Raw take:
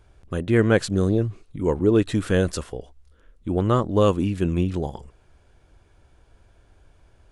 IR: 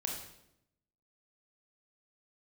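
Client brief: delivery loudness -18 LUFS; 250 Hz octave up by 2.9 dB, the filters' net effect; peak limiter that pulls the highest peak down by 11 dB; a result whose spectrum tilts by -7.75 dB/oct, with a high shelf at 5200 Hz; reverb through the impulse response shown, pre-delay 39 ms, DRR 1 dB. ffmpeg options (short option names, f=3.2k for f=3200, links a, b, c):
-filter_complex "[0:a]equalizer=f=250:t=o:g=4,highshelf=f=5.2k:g=-5.5,alimiter=limit=-14.5dB:level=0:latency=1,asplit=2[a][b];[1:a]atrim=start_sample=2205,adelay=39[c];[b][c]afir=irnorm=-1:irlink=0,volume=-2.5dB[d];[a][d]amix=inputs=2:normalize=0,volume=4.5dB"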